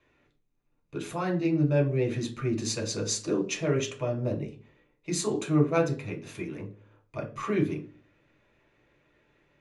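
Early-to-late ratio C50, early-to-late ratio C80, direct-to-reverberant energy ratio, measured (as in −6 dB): 12.5 dB, 17.5 dB, 0.0 dB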